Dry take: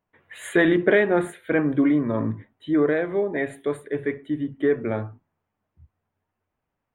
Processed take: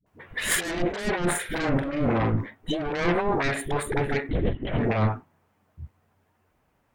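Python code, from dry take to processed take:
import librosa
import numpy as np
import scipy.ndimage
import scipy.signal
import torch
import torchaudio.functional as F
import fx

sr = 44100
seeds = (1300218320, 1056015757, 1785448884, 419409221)

y = fx.dynamic_eq(x, sr, hz=360.0, q=0.88, threshold_db=-32.0, ratio=4.0, max_db=-5)
y = fx.cheby_harmonics(y, sr, harmonics=(8,), levels_db=(-11,), full_scale_db=-9.0)
y = fx.over_compress(y, sr, threshold_db=-31.0, ratio=-1.0)
y = fx.doubler(y, sr, ms=44.0, db=-7.0, at=(1.25, 2.34))
y = fx.dispersion(y, sr, late='highs', ms=64.0, hz=410.0)
y = fx.lpc_vocoder(y, sr, seeds[0], excitation='whisper', order=10, at=(4.29, 4.79))
y = F.gain(torch.from_numpy(y), 5.5).numpy()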